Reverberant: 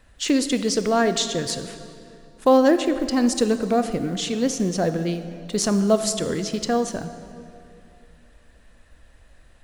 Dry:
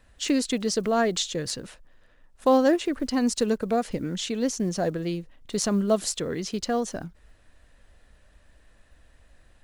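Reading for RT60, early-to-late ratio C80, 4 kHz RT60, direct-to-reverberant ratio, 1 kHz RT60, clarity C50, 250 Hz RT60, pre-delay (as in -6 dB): 2.6 s, 11.0 dB, 1.9 s, 9.5 dB, 2.4 s, 10.0 dB, 2.9 s, 21 ms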